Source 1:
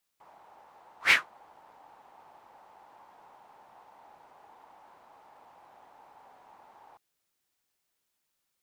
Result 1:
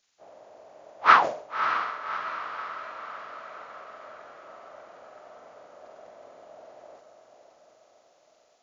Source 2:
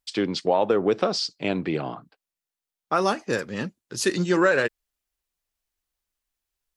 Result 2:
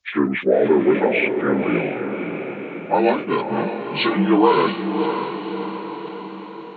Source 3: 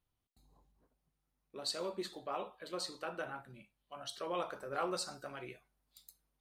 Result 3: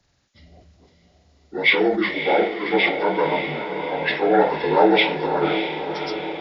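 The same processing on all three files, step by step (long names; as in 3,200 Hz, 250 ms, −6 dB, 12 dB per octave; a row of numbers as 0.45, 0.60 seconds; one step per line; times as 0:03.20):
partials spread apart or drawn together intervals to 75%
feedback delay with all-pass diffusion 596 ms, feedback 57%, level −7 dB
level that may fall only so fast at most 110 dB per second
normalise the peak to −3 dBFS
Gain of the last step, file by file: +7.5, +6.0, +22.0 decibels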